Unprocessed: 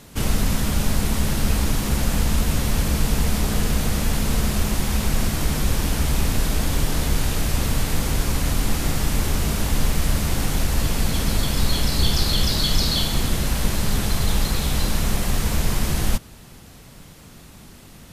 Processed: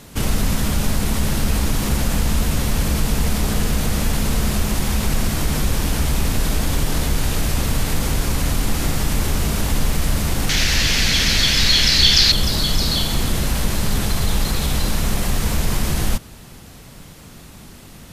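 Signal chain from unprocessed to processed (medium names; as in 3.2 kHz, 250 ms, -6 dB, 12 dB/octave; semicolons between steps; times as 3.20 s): 10.49–12.32 s: high-order bell 3.2 kHz +13.5 dB 2.3 oct; in parallel at +1 dB: peak limiter -15.5 dBFS, peak gain reduction 15.5 dB; on the sum: trim -3 dB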